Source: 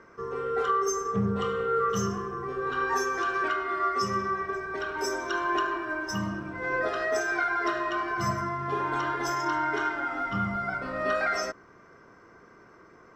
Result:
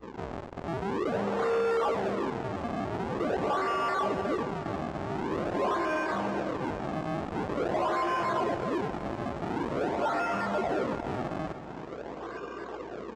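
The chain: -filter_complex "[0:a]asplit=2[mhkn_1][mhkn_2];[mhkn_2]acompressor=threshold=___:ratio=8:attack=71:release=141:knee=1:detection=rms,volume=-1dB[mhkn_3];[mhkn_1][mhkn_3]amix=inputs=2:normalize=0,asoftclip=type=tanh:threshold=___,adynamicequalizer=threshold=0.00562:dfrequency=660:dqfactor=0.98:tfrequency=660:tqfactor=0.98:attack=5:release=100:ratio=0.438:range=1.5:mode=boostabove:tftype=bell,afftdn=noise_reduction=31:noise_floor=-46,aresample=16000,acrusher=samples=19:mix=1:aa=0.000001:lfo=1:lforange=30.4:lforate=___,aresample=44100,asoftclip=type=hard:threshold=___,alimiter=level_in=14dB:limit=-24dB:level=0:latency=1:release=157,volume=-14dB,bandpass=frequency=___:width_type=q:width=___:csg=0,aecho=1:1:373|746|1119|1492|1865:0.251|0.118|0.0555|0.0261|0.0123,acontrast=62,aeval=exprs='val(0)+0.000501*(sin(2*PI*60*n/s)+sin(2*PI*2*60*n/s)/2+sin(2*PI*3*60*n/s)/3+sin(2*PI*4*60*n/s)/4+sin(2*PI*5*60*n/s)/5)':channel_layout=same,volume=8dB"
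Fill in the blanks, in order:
-41dB, -25.5dB, 0.46, -32dB, 670, 0.85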